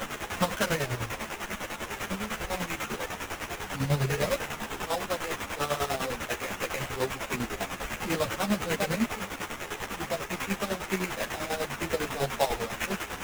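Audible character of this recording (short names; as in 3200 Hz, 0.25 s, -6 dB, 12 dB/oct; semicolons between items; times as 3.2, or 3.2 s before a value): a quantiser's noise floor 6-bit, dither triangular; chopped level 10 Hz, depth 65%, duty 45%; aliases and images of a low sample rate 4500 Hz, jitter 20%; a shimmering, thickened sound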